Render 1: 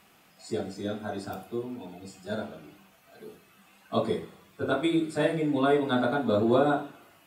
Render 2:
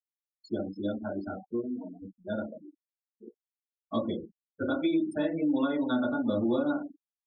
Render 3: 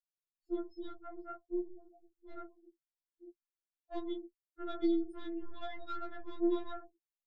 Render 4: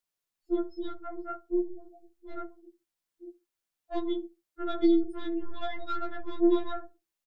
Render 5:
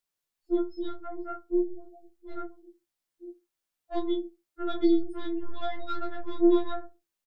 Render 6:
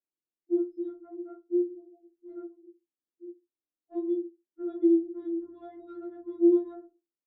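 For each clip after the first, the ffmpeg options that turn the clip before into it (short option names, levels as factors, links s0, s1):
-filter_complex "[0:a]afftfilt=real='re*gte(hypot(re,im),0.0251)':imag='im*gte(hypot(re,im),0.0251)':win_size=1024:overlap=0.75,aecho=1:1:3.5:0.7,acrossover=split=340|3500[s0][s1][s2];[s0]acompressor=threshold=0.0447:ratio=4[s3];[s1]acompressor=threshold=0.0224:ratio=4[s4];[s2]acompressor=threshold=0.00282:ratio=4[s5];[s3][s4][s5]amix=inputs=3:normalize=0"
-af "lowshelf=f=70:g=12,aeval=exprs='0.168*(cos(1*acos(clip(val(0)/0.168,-1,1)))-cos(1*PI/2))+0.0106*(cos(6*acos(clip(val(0)/0.168,-1,1)))-cos(6*PI/2))':c=same,afftfilt=real='re*4*eq(mod(b,16),0)':imag='im*4*eq(mod(b,16),0)':win_size=2048:overlap=0.75,volume=0.398"
-filter_complex "[0:a]asplit=2[s0][s1];[s1]adelay=68,lowpass=f=1200:p=1,volume=0.106,asplit=2[s2][s3];[s3]adelay=68,lowpass=f=1200:p=1,volume=0.25[s4];[s0][s2][s4]amix=inputs=3:normalize=0,volume=2.51"
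-filter_complex "[0:a]asplit=2[s0][s1];[s1]adelay=23,volume=0.447[s2];[s0][s2]amix=inputs=2:normalize=0"
-af "bandpass=f=310:t=q:w=3.2:csg=0,volume=1.26"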